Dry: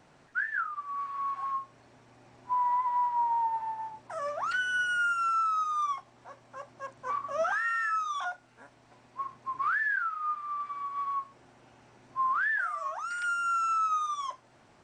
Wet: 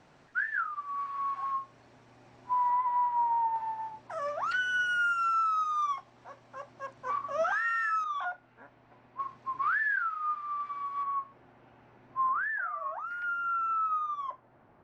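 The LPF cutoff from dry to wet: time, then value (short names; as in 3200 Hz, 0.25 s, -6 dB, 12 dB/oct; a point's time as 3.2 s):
6700 Hz
from 2.7 s 3200 Hz
from 3.56 s 5800 Hz
from 8.04 s 2500 Hz
from 9.2 s 4800 Hz
from 11.03 s 2400 Hz
from 12.29 s 1500 Hz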